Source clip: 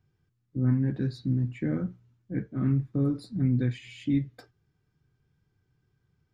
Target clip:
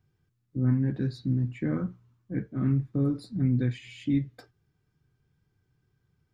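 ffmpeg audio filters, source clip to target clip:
-filter_complex "[0:a]asettb=1/sr,asplit=3[a][b][c];[a]atrim=end=1.654[d];[b]atrim=start=1.65:end=2.35,asetpts=PTS-STARTPTS,afade=t=in:d=0.004:c=qsin,afade=t=out:st=0.696:d=0.004:c=qsin,equalizer=f=1.1k:t=o:w=0.42:g=10[e];[c]atrim=start=2.346[f];[d][e]acrossfade=d=0.004:c1=hsin:c2=qsin[g];[g][f]acrossfade=d=0.004:c1=qsin:c2=hsin"

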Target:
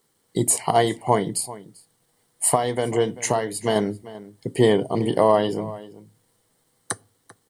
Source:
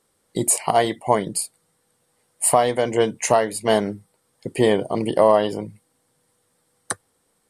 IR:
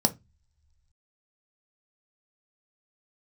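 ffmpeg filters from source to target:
-filter_complex "[0:a]asettb=1/sr,asplit=3[a][b][c];[a]atrim=end=2.554[d];[b]atrim=start=2.55:end=3.76,asetpts=PTS-STARTPTS,afade=t=in:d=0.004:c=qsin,afade=t=out:st=1.206:d=0.004:c=qsin,acompressor=threshold=-18dB:ratio=2.5[e];[c]atrim=start=3.756[f];[d][e]acrossfade=d=0.004:c1=hsin:c2=qsin[g];[g][f]acrossfade=d=0.004:c1=qsin:c2=hsin,acrusher=bits=10:mix=0:aa=0.000001,asplit=2[h][i];[i]adelay=390.7,volume=-17dB,highshelf=f=4k:g=-8.79[j];[h][j]amix=inputs=2:normalize=0,asplit=2[k][l];[1:a]atrim=start_sample=2205,asetrate=22932,aresample=44100[m];[l][m]afir=irnorm=-1:irlink=0,volume=-25.5dB[n];[k][n]amix=inputs=2:normalize=0,volume=-2dB"

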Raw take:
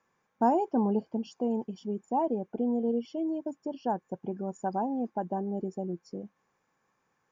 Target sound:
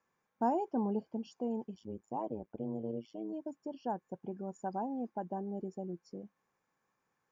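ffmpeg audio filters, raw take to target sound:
-filter_complex "[0:a]asplit=3[a][b][c];[a]afade=t=out:st=1.74:d=0.02[d];[b]tremolo=f=110:d=0.857,afade=t=in:st=1.74:d=0.02,afade=t=out:st=3.32:d=0.02[e];[c]afade=t=in:st=3.32:d=0.02[f];[d][e][f]amix=inputs=3:normalize=0,volume=-6.5dB"

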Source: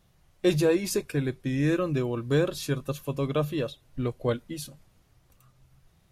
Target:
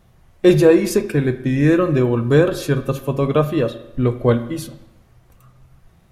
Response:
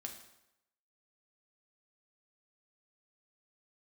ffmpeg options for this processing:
-filter_complex "[0:a]asplit=2[a][b];[1:a]atrim=start_sample=2205,lowpass=2.6k[c];[b][c]afir=irnorm=-1:irlink=0,volume=4dB[d];[a][d]amix=inputs=2:normalize=0,volume=5dB"

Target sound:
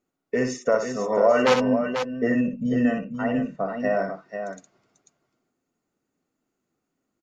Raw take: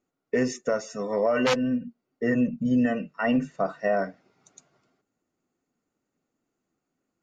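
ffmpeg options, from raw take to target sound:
-filter_complex "[0:a]asettb=1/sr,asplit=3[a][b][c];[a]atrim=end=0.624[d];[b]atrim=start=0.62:end=2.28,asetpts=PTS-STARTPTS,afade=t=in:d=0.004:c=qsin,afade=t=out:st=1.656:d=0.004:c=qsin,equalizer=f=820:t=o:w=1.8:g=6.5[e];[c]atrim=start=2.276[f];[d][e]acrossfade=d=0.004:c1=hsin:c2=qsin[g];[g][f]acrossfade=d=0.004:c1=qsin:c2=hsin,asettb=1/sr,asplit=3[h][i][j];[h]atrim=end=2.984[k];[i]atrim=start=2.98:end=3.8,asetpts=PTS-STARTPTS,afade=t=in:d=0.004:c=qsin,afade=t=out:st=0.816:d=0.004:c=qsin,lowpass=f=1.2k:p=1[l];[j]atrim=start=3.796[m];[k][l]acrossfade=d=0.004:c1=hsin:c2=qsin[n];[n][m]acrossfade=d=0.004:c1=qsin:c2=hsin,aecho=1:1:62|491:0.473|0.422"

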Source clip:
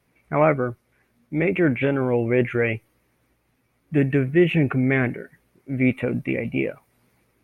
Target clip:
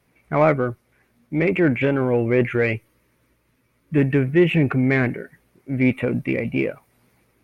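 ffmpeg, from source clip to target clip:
-filter_complex "[0:a]asplit=2[a][b];[b]asoftclip=type=tanh:threshold=-20dB,volume=-9dB[c];[a][c]amix=inputs=2:normalize=0,asettb=1/sr,asplit=3[d][e][f];[d]atrim=end=2.754[g];[e]atrim=start=2.75:end=3.98,asetpts=PTS-STARTPTS,afade=t=in:d=0.004:c=qsin,afade=t=out:st=1.226:d=0.004:c=qsin,asuperstop=centerf=760:order=4:qfactor=4.8[h];[f]atrim=start=3.976[i];[g][h]acrossfade=d=0.004:c1=hsin:c2=qsin[j];[j][i]acrossfade=d=0.004:c1=qsin:c2=hsin"

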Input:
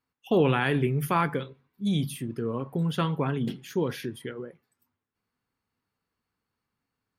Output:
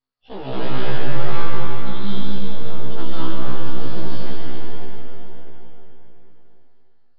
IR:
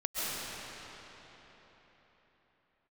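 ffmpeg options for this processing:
-filter_complex "[0:a]equalizer=f=2.3k:t=o:w=0.38:g=-10,asplit=2[a][b];[b]acompressor=threshold=-33dB:ratio=16,volume=1dB[c];[a][c]amix=inputs=2:normalize=0,aeval=exprs='max(val(0),0)':c=same,crystalizer=i=3:c=0[d];[1:a]atrim=start_sample=2205[e];[d][e]afir=irnorm=-1:irlink=0,aresample=11025,aresample=44100,afftfilt=real='re*1.73*eq(mod(b,3),0)':imag='im*1.73*eq(mod(b,3),0)':win_size=2048:overlap=0.75,volume=-6dB"

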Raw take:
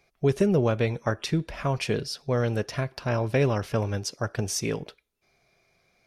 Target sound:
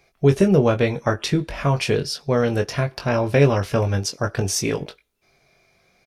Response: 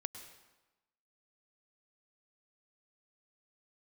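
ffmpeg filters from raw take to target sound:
-filter_complex "[0:a]asplit=2[a][b];[b]adelay=21,volume=-6.5dB[c];[a][c]amix=inputs=2:normalize=0,volume=5.5dB"

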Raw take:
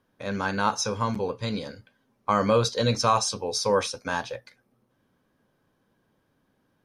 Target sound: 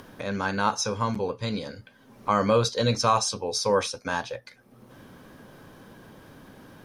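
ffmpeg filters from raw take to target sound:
-af "acompressor=mode=upward:threshold=-30dB:ratio=2.5"

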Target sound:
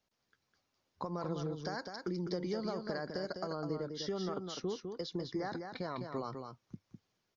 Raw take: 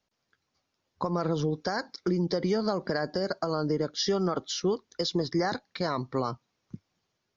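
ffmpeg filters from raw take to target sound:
-filter_complex "[0:a]asettb=1/sr,asplit=3[a][b][c];[a]atrim=end=3.554[d];[b]atrim=start=3.55:end=6.06,asetpts=PTS-STARTPTS,afade=t=in:d=0.004:c=qsin,afade=t=out:st=2.506:d=0.004:c=qsin,highshelf=f=4.7k:g=-11[e];[c]atrim=start=6.056[f];[d][e]acrossfade=d=0.004:c1=hsin:c2=qsin[g];[g][f]acrossfade=d=0.004:c1=qsin:c2=hsin,acompressor=threshold=-45dB:ratio=1.5,aecho=1:1:204:0.501,volume=-3dB"

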